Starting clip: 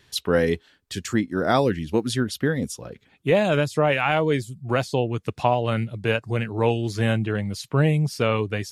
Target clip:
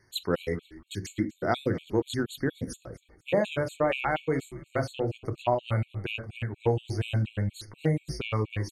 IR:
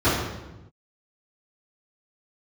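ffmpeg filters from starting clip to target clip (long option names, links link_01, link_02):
-filter_complex "[0:a]asplit=4[link_01][link_02][link_03][link_04];[link_02]adelay=246,afreqshift=-100,volume=-20dB[link_05];[link_03]adelay=492,afreqshift=-200,volume=-29.6dB[link_06];[link_04]adelay=738,afreqshift=-300,volume=-39.3dB[link_07];[link_01][link_05][link_06][link_07]amix=inputs=4:normalize=0,asplit=2[link_08][link_09];[1:a]atrim=start_sample=2205,atrim=end_sample=3969[link_10];[link_09][link_10]afir=irnorm=-1:irlink=0,volume=-27.5dB[link_11];[link_08][link_11]amix=inputs=2:normalize=0,afftfilt=real='re*gt(sin(2*PI*4.2*pts/sr)*(1-2*mod(floor(b*sr/1024/2200),2)),0)':imag='im*gt(sin(2*PI*4.2*pts/sr)*(1-2*mod(floor(b*sr/1024/2200),2)),0)':win_size=1024:overlap=0.75,volume=-5.5dB"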